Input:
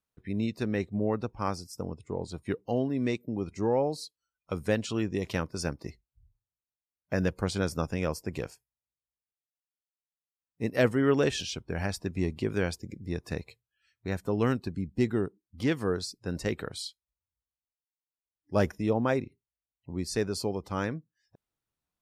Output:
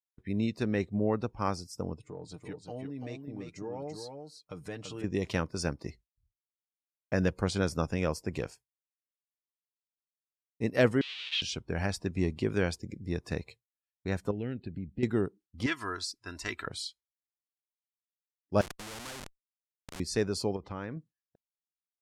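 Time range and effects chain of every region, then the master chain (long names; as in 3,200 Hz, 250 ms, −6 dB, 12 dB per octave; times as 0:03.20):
0:01.98–0:05.04: comb filter 6.6 ms, depth 57% + downward compressor 2 to 1, threshold −47 dBFS + single-tap delay 337 ms −5.5 dB
0:11.01–0:11.42: comparator with hysteresis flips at −34.5 dBFS + flat-topped band-pass 3,200 Hz, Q 2.1
0:14.31–0:15.03: downward compressor 2 to 1, threshold −36 dBFS + high-frequency loss of the air 140 metres + phaser with its sweep stopped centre 2,600 Hz, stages 4
0:15.66–0:16.67: low shelf with overshoot 790 Hz −10.5 dB, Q 1.5 + comb filter 3 ms, depth 66%
0:18.61–0:20.00: one scale factor per block 5 bits + comparator with hysteresis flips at −38 dBFS + every bin compressed towards the loudest bin 2 to 1
0:20.56–0:20.97: low-pass filter 3,000 Hz + downward compressor 3 to 1, threshold −36 dBFS + one half of a high-frequency compander encoder only
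whole clip: downward expander −50 dBFS; low-pass filter 10,000 Hz 12 dB per octave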